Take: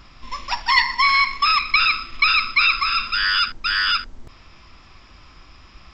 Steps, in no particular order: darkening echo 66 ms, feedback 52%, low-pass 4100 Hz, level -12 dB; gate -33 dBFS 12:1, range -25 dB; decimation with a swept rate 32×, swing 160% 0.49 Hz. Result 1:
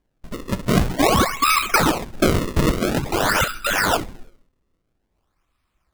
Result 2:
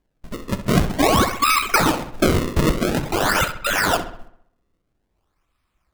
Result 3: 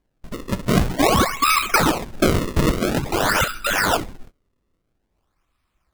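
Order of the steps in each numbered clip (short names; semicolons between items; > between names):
gate > darkening echo > decimation with a swept rate; gate > decimation with a swept rate > darkening echo; darkening echo > gate > decimation with a swept rate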